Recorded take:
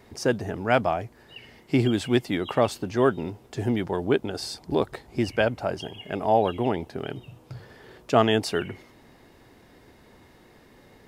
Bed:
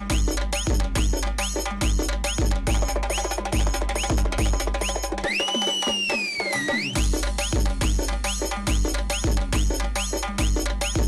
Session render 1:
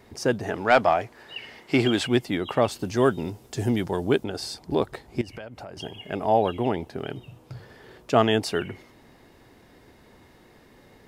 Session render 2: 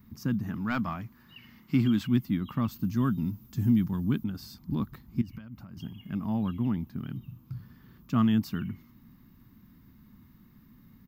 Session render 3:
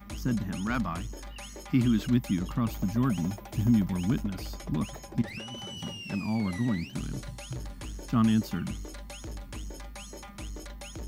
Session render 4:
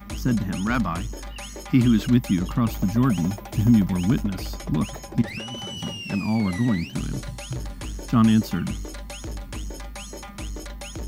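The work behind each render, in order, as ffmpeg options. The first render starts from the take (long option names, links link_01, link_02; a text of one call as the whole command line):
ffmpeg -i in.wav -filter_complex "[0:a]asettb=1/sr,asplit=3[link_01][link_02][link_03];[link_01]atrim=end=0.434[link_04];[link_02]atrim=start=0.43:end=2.07,asetpts=PTS-STARTPTS,afade=type=in:duration=0.004:curve=qsin,afade=type=out:start_time=1.636:duration=0.004:curve=qsin,asplit=2[link_05][link_06];[link_06]highpass=frequency=720:poles=1,volume=13dB,asoftclip=type=tanh:threshold=-5.5dB[link_07];[link_05][link_07]amix=inputs=2:normalize=0,lowpass=frequency=5100:poles=1,volume=-6dB[link_08];[link_03]atrim=start=2.066[link_09];[link_04][link_08]acrossfade=duration=0.004:curve1=hsin:curve2=qsin[link_10];[link_10][link_09]acrossfade=duration=0.004:curve1=qsin:curve2=hsin,asettb=1/sr,asplit=3[link_11][link_12][link_13];[link_11]atrim=end=2.794[link_14];[link_12]atrim=start=2.79:end=4.24,asetpts=PTS-STARTPTS,afade=type=in:duration=0.004:curve=qsin,afade=type=out:start_time=1.446:duration=0.004:curve=qsin,bass=frequency=250:gain=2,treble=frequency=4000:gain=9[link_15];[link_13]atrim=start=4.236[link_16];[link_14][link_15]acrossfade=duration=0.004:curve1=hsin:curve2=qsin[link_17];[link_17][link_16]acrossfade=duration=0.004:curve1=qsin:curve2=hsin,asettb=1/sr,asplit=3[link_18][link_19][link_20];[link_18]atrim=end=5.214[link_21];[link_19]atrim=start=5.21:end=5.77,asetpts=PTS-STARTPTS,afade=type=in:duration=0.004:curve=qsin,afade=type=out:start_time=0.556:duration=0.004:curve=qsin,acompressor=threshold=-36dB:ratio=6:attack=3.2:release=140:knee=1:detection=peak[link_22];[link_20]atrim=start=5.766[link_23];[link_21][link_22]acrossfade=duration=0.004:curve1=hsin:curve2=qsin[link_24];[link_24][link_23]acrossfade=duration=0.004:curve1=qsin:curve2=hsin" out.wav
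ffmpeg -i in.wav -af "firequalizer=gain_entry='entry(100,0);entry(210,6);entry(410,-23);entry(730,-24);entry(1100,-7);entry(1700,-14);entry(6600,-13);entry(9500,-21);entry(14000,9)':delay=0.05:min_phase=1" out.wav
ffmpeg -i in.wav -i bed.wav -filter_complex "[1:a]volume=-17.5dB[link_01];[0:a][link_01]amix=inputs=2:normalize=0" out.wav
ffmpeg -i in.wav -af "volume=6.5dB" out.wav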